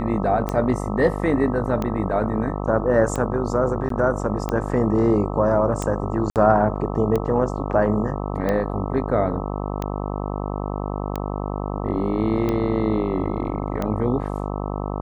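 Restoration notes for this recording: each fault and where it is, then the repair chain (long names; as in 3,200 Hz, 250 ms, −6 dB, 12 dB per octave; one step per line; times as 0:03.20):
mains buzz 50 Hz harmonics 26 −27 dBFS
scratch tick 45 rpm −12 dBFS
0:03.89–0:03.90: drop-out 13 ms
0:06.30–0:06.36: drop-out 58 ms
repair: click removal
hum removal 50 Hz, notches 26
repair the gap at 0:03.89, 13 ms
repair the gap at 0:06.30, 58 ms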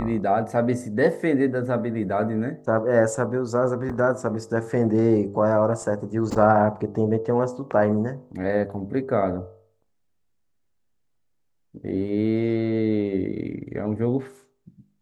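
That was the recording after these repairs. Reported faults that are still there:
none of them is left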